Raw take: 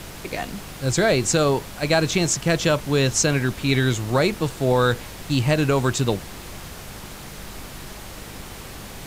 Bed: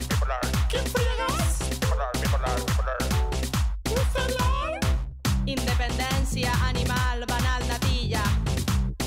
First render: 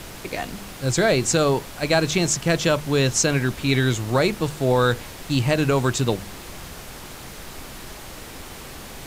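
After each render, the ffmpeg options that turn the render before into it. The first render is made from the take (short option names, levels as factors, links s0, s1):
-af "bandreject=f=50:t=h:w=4,bandreject=f=100:t=h:w=4,bandreject=f=150:t=h:w=4,bandreject=f=200:t=h:w=4"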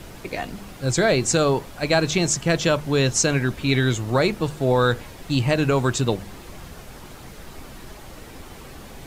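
-af "afftdn=nr=7:nf=-39"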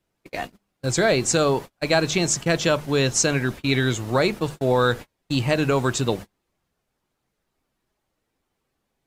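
-af "agate=range=0.0178:threshold=0.0355:ratio=16:detection=peak,lowshelf=f=110:g=-6.5"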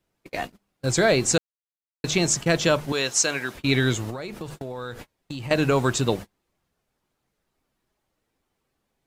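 -filter_complex "[0:a]asettb=1/sr,asplit=3[s0][s1][s2];[s0]atrim=end=2.924[s3];[s1]atrim=start=2.92:end=3.55,asetpts=PTS-STARTPTS,afade=t=in:d=0.004:c=qsin,afade=t=out:st=0.626:d=0.004:c=qsin,highpass=f=780:p=1[s4];[s2]atrim=start=3.546[s5];[s3][s4]acrossfade=d=0.004:c1=hsin:c2=qsin[s6];[s6][s5]acrossfade=d=0.004:c1=qsin:c2=hsin,asettb=1/sr,asplit=3[s7][s8][s9];[s7]atrim=end=4.104[s10];[s8]atrim=start=4.1:end=5.51,asetpts=PTS-STARTPTS,afade=t=in:d=0.004:c=qsin,afade=t=out:st=1.406:d=0.004:c=qsin,acompressor=threshold=0.0355:ratio=20:attack=3.2:release=140:knee=1:detection=peak[s11];[s9]atrim=start=5.506[s12];[s10][s11]acrossfade=d=0.004:c1=hsin:c2=qsin[s13];[s13][s12]acrossfade=d=0.004:c1=qsin:c2=hsin,asplit=3[s14][s15][s16];[s14]atrim=end=1.38,asetpts=PTS-STARTPTS,afade=t=out:st=1.376:d=0.004:c=hsin[s17];[s15]atrim=start=1.38:end=2.04,asetpts=PTS-STARTPTS,volume=0[s18];[s16]atrim=start=2.04,asetpts=PTS-STARTPTS,afade=t=in:d=0.004:c=hsin[s19];[s17][s18][s19]concat=n=3:v=0:a=1"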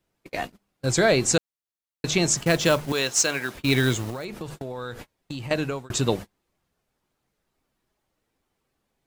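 -filter_complex "[0:a]asettb=1/sr,asplit=3[s0][s1][s2];[s0]atrim=end=2.374[s3];[s1]atrim=start=2.37:end=4.25,asetpts=PTS-STARTPTS,afade=t=in:d=0.004:c=qsin,afade=t=out:st=1.876:d=0.004:c=qsin,acrusher=bits=4:mode=log:mix=0:aa=0.000001[s4];[s2]atrim=start=4.246[s5];[s3][s4]acrossfade=d=0.004:c1=hsin:c2=qsin[s6];[s6][s5]acrossfade=d=0.004:c1=qsin:c2=hsin,asplit=2[s7][s8];[s7]atrim=end=5.9,asetpts=PTS-STARTPTS,afade=t=out:st=5.39:d=0.51[s9];[s8]atrim=start=5.9,asetpts=PTS-STARTPTS,afade=t=in:d=0.004:c=hsin[s10];[s9][s10]concat=n=2:v=0:a=1"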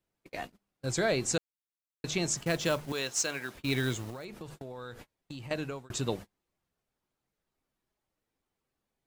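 -af "volume=0.355"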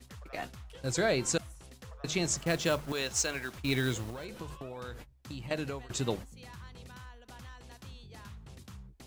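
-filter_complex "[1:a]volume=0.0631[s0];[0:a][s0]amix=inputs=2:normalize=0"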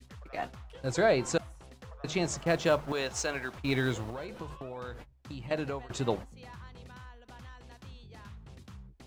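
-af "lowpass=f=3800:p=1,adynamicequalizer=threshold=0.00562:dfrequency=780:dqfactor=0.83:tfrequency=780:tqfactor=0.83:attack=5:release=100:ratio=0.375:range=3:mode=boostabove:tftype=bell"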